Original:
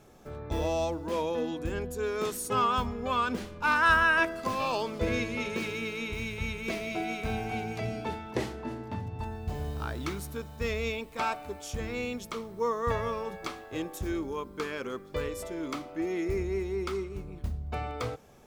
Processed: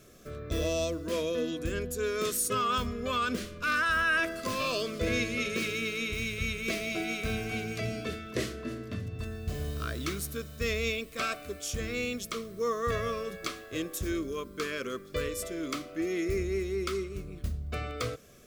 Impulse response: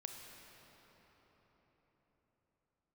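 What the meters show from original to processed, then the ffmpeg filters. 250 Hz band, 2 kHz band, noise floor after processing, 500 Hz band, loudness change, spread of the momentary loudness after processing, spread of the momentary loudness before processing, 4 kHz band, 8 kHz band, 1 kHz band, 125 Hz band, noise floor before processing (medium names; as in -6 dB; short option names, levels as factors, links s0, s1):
0.0 dB, -1.0 dB, -48 dBFS, -0.5 dB, -0.5 dB, 8 LU, 10 LU, +3.5 dB, +6.5 dB, -4.5 dB, 0.0 dB, -48 dBFS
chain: -af "alimiter=limit=0.0944:level=0:latency=1:release=14,asuperstop=centerf=860:order=4:qfactor=2.2,highshelf=f=2900:g=7.5"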